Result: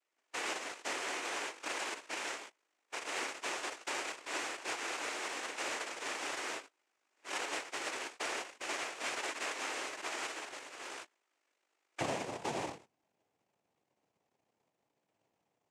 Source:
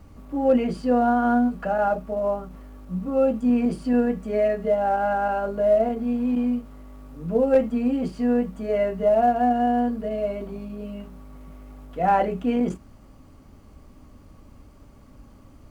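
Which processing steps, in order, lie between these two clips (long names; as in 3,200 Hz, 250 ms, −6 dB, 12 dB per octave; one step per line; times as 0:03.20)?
samples sorted by size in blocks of 128 samples
high-pass filter 740 Hz 24 dB per octave, from 0:12.00 260 Hz
noise gate −40 dBFS, range −25 dB
downward compressor 6 to 1, threshold −30 dBFS, peak gain reduction 15.5 dB
cochlear-implant simulation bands 4
level −3.5 dB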